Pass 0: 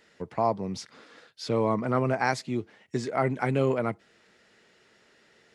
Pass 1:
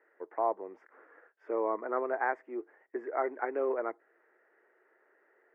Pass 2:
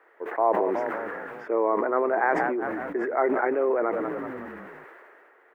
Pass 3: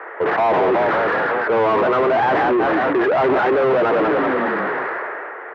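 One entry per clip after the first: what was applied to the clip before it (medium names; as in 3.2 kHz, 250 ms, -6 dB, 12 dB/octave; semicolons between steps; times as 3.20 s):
elliptic band-pass 340–1800 Hz, stop band 40 dB; trim -4 dB
frequency-shifting echo 185 ms, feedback 60%, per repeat -39 Hz, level -19 dB; band noise 410–1900 Hz -69 dBFS; decay stretcher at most 22 dB/s; trim +6.5 dB
overdrive pedal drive 36 dB, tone 1.5 kHz, clips at -9 dBFS; band-pass 130–2600 Hz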